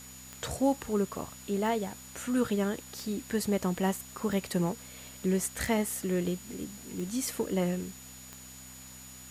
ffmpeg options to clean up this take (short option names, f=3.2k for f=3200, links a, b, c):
-af "adeclick=t=4,bandreject=f=64:t=h:w=4,bandreject=f=128:t=h:w=4,bandreject=f=192:t=h:w=4,bandreject=f=256:t=h:w=4,bandreject=f=6.9k:w=30,afwtdn=0.0032"